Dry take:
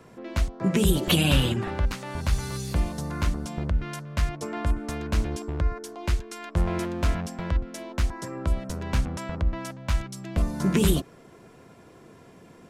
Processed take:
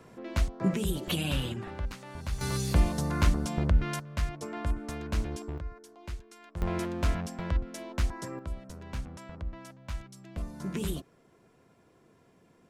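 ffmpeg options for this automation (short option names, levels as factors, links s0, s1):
-af "asetnsamples=n=441:p=0,asendcmd='0.74 volume volume -9.5dB;2.41 volume volume 1.5dB;4 volume volume -5.5dB;5.58 volume volume -14dB;6.62 volume volume -3.5dB;8.39 volume volume -12dB',volume=0.75"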